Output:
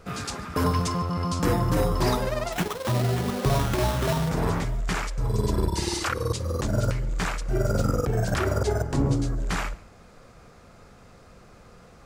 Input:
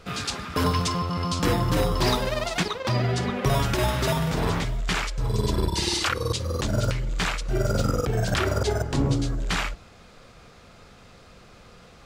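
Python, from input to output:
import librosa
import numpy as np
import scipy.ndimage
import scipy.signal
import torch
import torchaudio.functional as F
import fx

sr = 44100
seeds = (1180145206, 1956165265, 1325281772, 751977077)

y = fx.peak_eq(x, sr, hz=3400.0, db=-8.5, octaves=1.3)
y = fx.sample_hold(y, sr, seeds[0], rate_hz=4700.0, jitter_pct=20, at=(2.52, 4.29))
y = y + 10.0 ** (-23.0 / 20.0) * np.pad(y, (int(141 * sr / 1000.0), 0))[:len(y)]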